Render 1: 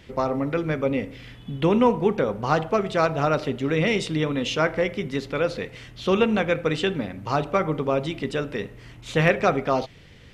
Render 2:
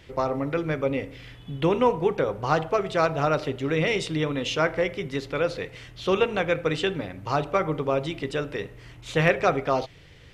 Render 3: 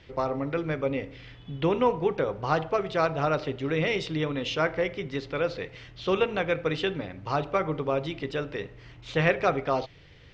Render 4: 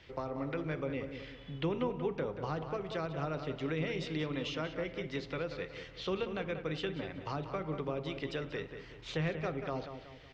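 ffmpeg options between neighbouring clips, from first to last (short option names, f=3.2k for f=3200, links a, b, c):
-af "equalizer=f=220:w=6.2:g=-15,volume=-1dB"
-af "lowpass=f=5.7k:w=0.5412,lowpass=f=5.7k:w=1.3066,volume=-2.5dB"
-filter_complex "[0:a]lowshelf=f=500:g=-5,acrossover=split=340[a][b];[b]acompressor=threshold=-36dB:ratio=6[c];[a][c]amix=inputs=2:normalize=0,asplit=2[d][e];[e]adelay=186,lowpass=f=3.2k:p=1,volume=-8.5dB,asplit=2[f][g];[g]adelay=186,lowpass=f=3.2k:p=1,volume=0.41,asplit=2[h][i];[i]adelay=186,lowpass=f=3.2k:p=1,volume=0.41,asplit=2[j][k];[k]adelay=186,lowpass=f=3.2k:p=1,volume=0.41,asplit=2[l][m];[m]adelay=186,lowpass=f=3.2k:p=1,volume=0.41[n];[d][f][h][j][l][n]amix=inputs=6:normalize=0,volume=-2dB"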